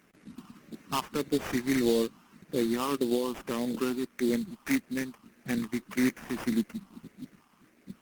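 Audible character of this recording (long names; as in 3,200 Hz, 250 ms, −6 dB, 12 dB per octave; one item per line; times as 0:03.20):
phaser sweep stages 4, 1.7 Hz, lowest notch 500–1,000 Hz
aliases and images of a low sample rate 4,100 Hz, jitter 20%
Opus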